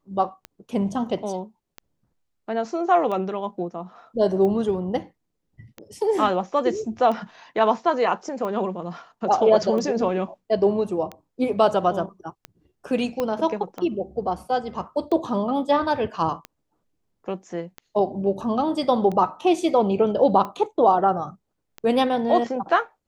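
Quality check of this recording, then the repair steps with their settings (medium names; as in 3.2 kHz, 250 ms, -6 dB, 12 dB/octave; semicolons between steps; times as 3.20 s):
tick 45 rpm -19 dBFS
13.20 s: pop -12 dBFS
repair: de-click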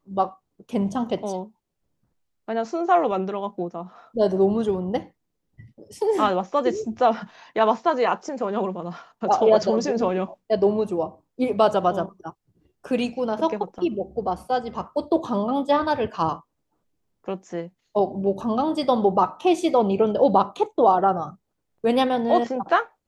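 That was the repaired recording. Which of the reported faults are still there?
13.20 s: pop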